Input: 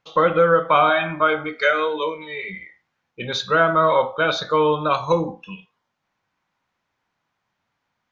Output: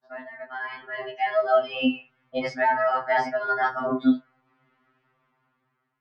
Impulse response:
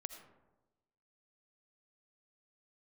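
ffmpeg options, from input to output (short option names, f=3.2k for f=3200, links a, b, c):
-af "lowpass=1.2k,asetrate=59535,aresample=44100,areverse,acompressor=threshold=-29dB:ratio=12,areverse,lowshelf=f=120:t=q:w=3:g=-7,dynaudnorm=f=520:g=5:m=14.5dB,afftfilt=real='re*2.45*eq(mod(b,6),0)':imag='im*2.45*eq(mod(b,6),0)':win_size=2048:overlap=0.75,volume=-1dB"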